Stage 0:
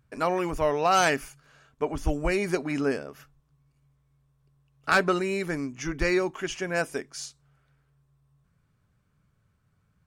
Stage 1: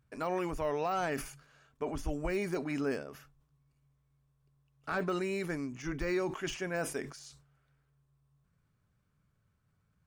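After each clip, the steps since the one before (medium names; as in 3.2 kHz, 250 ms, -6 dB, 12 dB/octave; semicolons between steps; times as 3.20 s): de-esser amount 100%; peak limiter -18 dBFS, peak gain reduction 5 dB; decay stretcher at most 100 dB/s; trim -6 dB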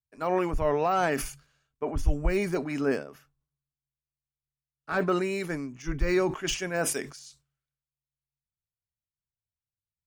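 three bands expanded up and down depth 100%; trim +5 dB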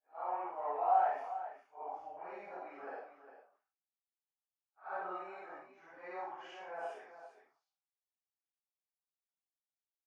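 phase randomisation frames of 200 ms; ladder band-pass 850 Hz, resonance 70%; on a send: multi-tap echo 55/403 ms -6.5/-11 dB; on the sum: trim -1.5 dB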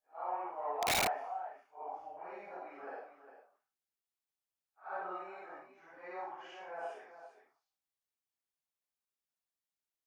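integer overflow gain 26 dB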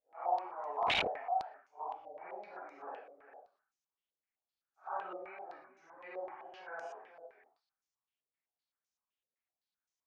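wow and flutter 28 cents; step-sequenced low-pass 7.8 Hz 520–6200 Hz; trim -4 dB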